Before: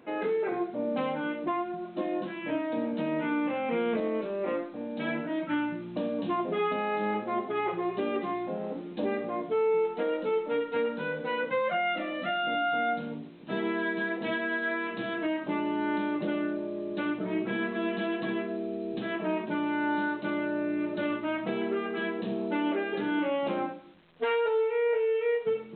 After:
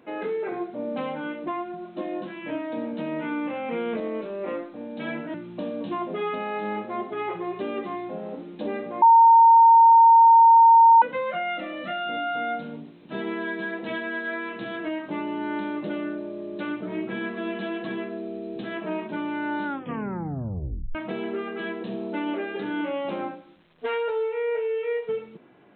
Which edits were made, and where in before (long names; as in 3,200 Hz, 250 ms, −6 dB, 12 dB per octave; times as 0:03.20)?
0:05.34–0:05.72: remove
0:09.40–0:11.40: beep over 917 Hz −10 dBFS
0:20.03: tape stop 1.30 s